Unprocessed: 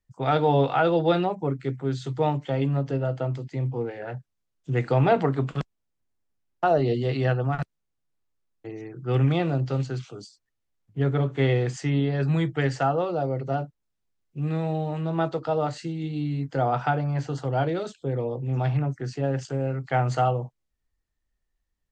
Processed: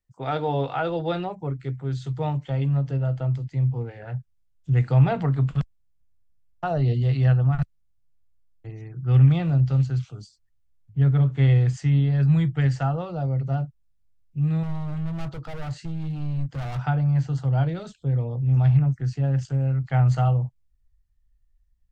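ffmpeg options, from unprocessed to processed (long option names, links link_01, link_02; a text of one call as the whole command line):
ffmpeg -i in.wav -filter_complex "[0:a]asettb=1/sr,asplit=3[link_01][link_02][link_03];[link_01]atrim=end=14.634[link_04];[link_02]atrim=start=14.63:end=16.79,asetpts=PTS-STARTPTS,afade=type=in:duration=0.004:curve=qsin,afade=type=out:start_time=2.156:duration=0.004:curve=qsin,asoftclip=type=hard:threshold=-30dB[link_05];[link_03]atrim=start=16.786[link_06];[link_04][link_05]acrossfade=duration=0.004:curve1=hsin:curve2=qsin[link_07];[link_07][link_06]acrossfade=duration=0.004:curve1=qsin:curve2=hsin,asubboost=boost=10:cutoff=110,volume=-4dB" out.wav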